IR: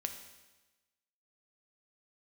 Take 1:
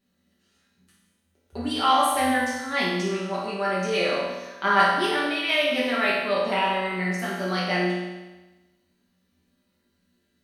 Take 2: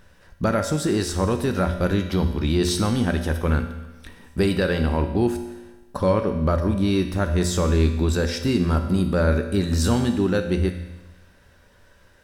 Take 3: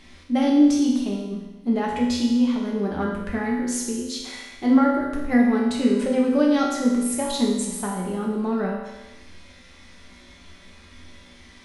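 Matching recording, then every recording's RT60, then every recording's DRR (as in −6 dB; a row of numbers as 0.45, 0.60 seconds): 2; 1.1, 1.1, 1.1 seconds; −9.0, 5.0, −4.0 decibels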